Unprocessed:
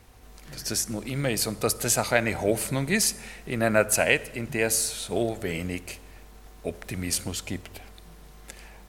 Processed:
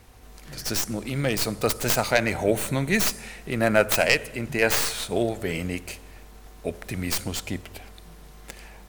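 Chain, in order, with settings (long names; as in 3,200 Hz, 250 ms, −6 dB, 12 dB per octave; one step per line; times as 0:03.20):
stylus tracing distortion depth 0.17 ms
0:02.36–0:03.06: notch filter 4,900 Hz, Q 7.1
0:04.62–0:05.05: parametric band 1,400 Hz +6 dB 2.2 octaves
level +2 dB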